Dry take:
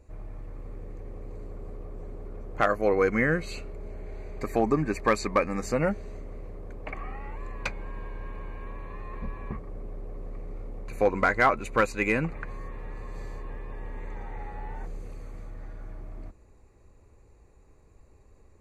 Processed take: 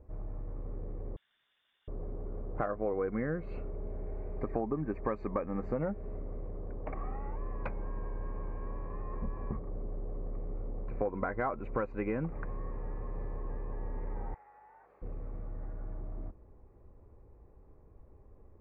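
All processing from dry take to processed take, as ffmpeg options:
ffmpeg -i in.wav -filter_complex "[0:a]asettb=1/sr,asplit=3[link_01][link_02][link_03];[link_01]atrim=end=1.164[link_04];[link_02]atrim=start=1.16:end=1.88,asetpts=PTS-STARTPTS,afade=type=in:duration=0.004:curve=qsin,afade=type=out:start_time=0.716:duration=0.004:curve=qsin,highpass=700,lowpass=frequency=3400:width_type=q:width=0.5098,lowpass=frequency=3400:width_type=q:width=0.6013,lowpass=frequency=3400:width_type=q:width=0.9,lowpass=frequency=3400:width_type=q:width=2.563,afreqshift=-4000[link_05];[link_03]atrim=start=1.876[link_06];[link_04][link_05]acrossfade=duration=0.004:curve1=hsin:curve2=qsin[link_07];[link_07][link_06]acrossfade=duration=0.004:curve1=qsin:curve2=hsin,asettb=1/sr,asplit=3[link_08][link_09][link_10];[link_08]atrim=end=14.344[link_11];[link_09]atrim=start=14.34:end=15.02,asetpts=PTS-STARTPTS,afade=type=in:duration=0.004:curve=qsin,afade=type=out:start_time=0.676:duration=0.004:curve=qsin,highpass=1000,acompressor=threshold=-54dB:ratio=3:attack=3.2:release=140:knee=1:detection=peak,aeval=exprs='val(0)+0.000141*(sin(2*PI*50*n/s)+sin(2*PI*2*50*n/s)/2+sin(2*PI*3*50*n/s)/3+sin(2*PI*4*50*n/s)/4+sin(2*PI*5*50*n/s)/5)':channel_layout=same[link_12];[link_10]atrim=start=15.016[link_13];[link_11][link_12]acrossfade=duration=0.004:curve1=hsin:curve2=qsin[link_14];[link_14][link_13]acrossfade=duration=0.004:curve1=qsin:curve2=hsin,lowpass=1200,aemphasis=mode=reproduction:type=75kf,acompressor=threshold=-30dB:ratio=5" out.wav

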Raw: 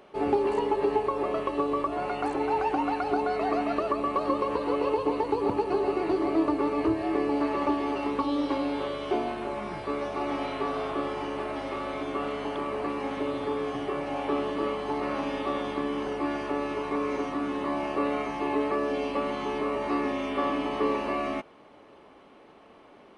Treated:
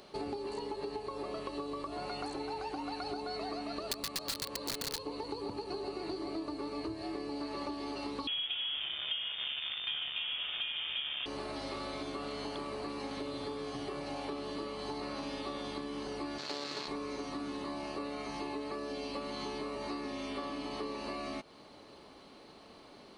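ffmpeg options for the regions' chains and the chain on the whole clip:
ffmpeg -i in.wav -filter_complex "[0:a]asettb=1/sr,asplit=3[link_01][link_02][link_03];[link_01]atrim=end=3.914[link_04];[link_02]atrim=start=3.91:end=5.01,asetpts=PTS-STARTPTS,afade=type=in:duration=0.004:curve=qsin,afade=type=out:start_time=1.096:duration=0.004:curve=qsin,highpass=56,aeval=exprs='(mod(10.6*val(0)+1,2)-1)/10.6':channel_layout=same[link_05];[link_03]atrim=start=5.006[link_06];[link_04][link_05]acrossfade=duration=0.004:curve1=hsin:curve2=qsin[link_07];[link_07][link_06]acrossfade=duration=0.004:curve1=qsin:curve2=hsin,asettb=1/sr,asplit=3[link_08][link_09][link_10];[link_08]atrim=end=8.274[link_11];[link_09]atrim=start=8.27:end=11.26,asetpts=PTS-STARTPTS,afade=type=in:duration=0.004:curve=qsin,afade=type=out:start_time=2.986:duration=0.004:curve=qsin,acrusher=bits=6:dc=4:mix=0:aa=0.000001,lowpass=frequency=3100:width_type=q:width=0.5098,lowpass=frequency=3100:width_type=q:width=0.6013,lowpass=frequency=3100:width_type=q:width=0.9,lowpass=frequency=3100:width_type=q:width=2.563,afreqshift=-3600[link_12];[link_10]atrim=start=11.256[link_13];[link_11][link_12]acrossfade=duration=0.004:curve1=hsin:curve2=qsin[link_14];[link_14][link_13]acrossfade=duration=0.004:curve1=qsin:curve2=hsin,asettb=1/sr,asplit=3[link_15][link_16][link_17];[link_15]atrim=end=16.384[link_18];[link_16]atrim=start=16.38:end=16.88,asetpts=PTS-STARTPTS,afade=type=in:duration=0.004:curve=qsin,afade=type=out:start_time=0.496:duration=0.004:curve=qsin,lowshelf=frequency=290:gain=-6,acrusher=bits=4:mix=0:aa=0.5,highpass=150,lowpass=6600[link_19];[link_17]atrim=start=16.876[link_20];[link_18][link_19]acrossfade=duration=0.004:curve1=hsin:curve2=qsin[link_21];[link_21][link_20]acrossfade=duration=0.004:curve1=qsin:curve2=hsin,bass=frequency=250:gain=5,treble=frequency=4000:gain=11,acompressor=threshold=-34dB:ratio=6,equalizer=frequency=4300:width=3.9:gain=14,volume=-3dB" out.wav

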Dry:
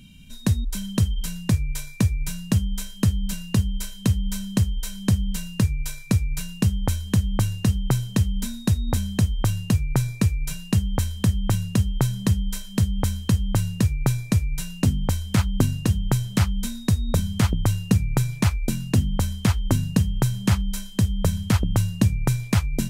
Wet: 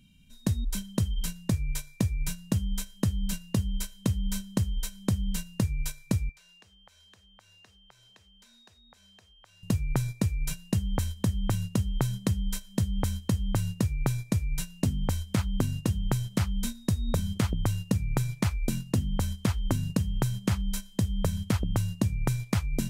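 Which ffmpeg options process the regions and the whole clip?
ffmpeg -i in.wav -filter_complex "[0:a]asettb=1/sr,asplit=3[link_01][link_02][link_03];[link_01]atrim=end=6.294[link_04];[link_02]atrim=start=6.29:end=9.63,asetpts=PTS-STARTPTS,afade=type=in:duration=0.004:curve=qsin,afade=type=out:start_time=3.336:duration=0.004:curve=qsin,acrossover=split=430 6600:gain=0.0631 1 0.2[link_05][link_06][link_07];[link_05][link_06][link_07]amix=inputs=3:normalize=0,acompressor=threshold=-42dB:ratio=6:attack=3.2:release=140:knee=1:detection=peak[link_08];[link_03]atrim=start=9.626[link_09];[link_04][link_08]acrossfade=duration=0.004:curve1=hsin:curve2=qsin[link_10];[link_10][link_09]acrossfade=duration=0.004:curve1=qsin:curve2=hsin,agate=range=-12dB:threshold=-27dB:ratio=16:detection=peak,acompressor=threshold=-25dB:ratio=3" out.wav

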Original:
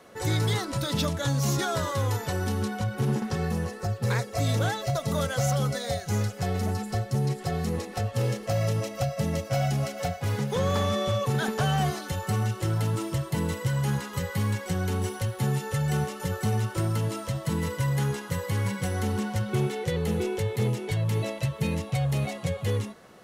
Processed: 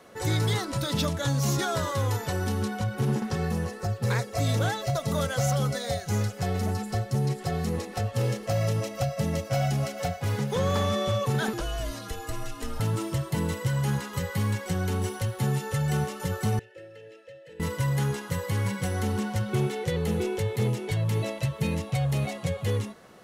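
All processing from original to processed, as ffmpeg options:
ffmpeg -i in.wav -filter_complex "[0:a]asettb=1/sr,asplit=3[link_01][link_02][link_03];[link_01]atrim=end=11.534[link_04];[link_02]atrim=start=11.53:end=12.8,asetpts=PTS-STARTPTS,afade=type=in:duration=0.004:curve=qsin,afade=type=out:start_time=1.266:duration=0.004:curve=qsin,acrossover=split=540|1500|3100[link_05][link_06][link_07][link_08];[link_05]acompressor=threshold=-31dB:ratio=3[link_09];[link_06]acompressor=threshold=-42dB:ratio=3[link_10];[link_07]acompressor=threshold=-48dB:ratio=3[link_11];[link_08]acompressor=threshold=-42dB:ratio=3[link_12];[link_09][link_10][link_11][link_12]amix=inputs=4:normalize=0,afreqshift=-94[link_13];[link_03]atrim=start=12.796[link_14];[link_04][link_13]acrossfade=duration=0.004:curve1=hsin:curve2=qsin[link_15];[link_15][link_14]acrossfade=duration=0.004:curve1=qsin:curve2=hsin,asettb=1/sr,asplit=3[link_16][link_17][link_18];[link_16]atrim=end=16.594[link_19];[link_17]atrim=start=16.59:end=17.6,asetpts=PTS-STARTPTS,afade=type=in:duration=0.004:curve=qsin,afade=type=out:start_time=1.006:duration=0.004:curve=qsin,asplit=3[link_20][link_21][link_22];[link_20]bandpass=frequency=530:width_type=q:width=8,volume=0dB[link_23];[link_21]bandpass=frequency=1840:width_type=q:width=8,volume=-6dB[link_24];[link_22]bandpass=frequency=2480:width_type=q:width=8,volume=-9dB[link_25];[link_23][link_24][link_25]amix=inputs=3:normalize=0,equalizer=frequency=500:width=0.37:gain=-5,aecho=1:1:2.3:0.5,atrim=end_sample=44541[link_26];[link_18]atrim=start=17.596[link_27];[link_19][link_26]acrossfade=duration=0.004:curve1=hsin:curve2=qsin[link_28];[link_28][link_27]acrossfade=duration=0.004:curve1=qsin:curve2=hsin" out.wav

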